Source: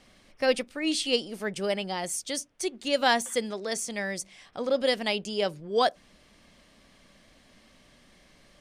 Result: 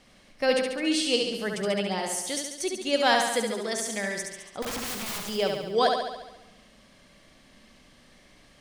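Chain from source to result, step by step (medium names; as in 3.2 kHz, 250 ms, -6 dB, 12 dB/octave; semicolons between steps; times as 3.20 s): 4.62–5.29 s: integer overflow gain 30 dB; flutter echo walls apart 12 m, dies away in 0.98 s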